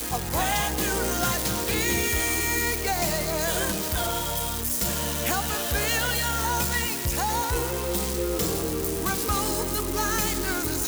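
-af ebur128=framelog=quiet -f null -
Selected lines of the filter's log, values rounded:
Integrated loudness:
  I:         -24.8 LUFS
  Threshold: -34.8 LUFS
Loudness range:
  LRA:         1.7 LU
  Threshold: -44.8 LUFS
  LRA low:   -25.7 LUFS
  LRA high:  -24.0 LUFS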